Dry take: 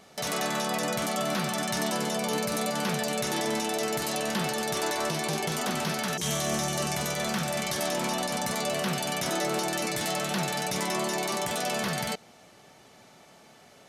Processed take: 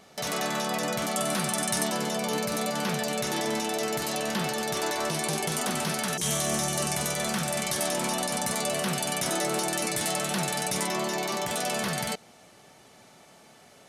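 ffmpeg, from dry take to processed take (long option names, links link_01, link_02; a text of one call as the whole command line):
ffmpeg -i in.wav -af "asetnsamples=nb_out_samples=441:pad=0,asendcmd='1.16 equalizer g 11;1.86 equalizer g 0;5.11 equalizer g 7.5;10.87 equalizer g -3;11.5 equalizer g 4.5',equalizer=frequency=9500:width_type=o:width=0.63:gain=-0.5" out.wav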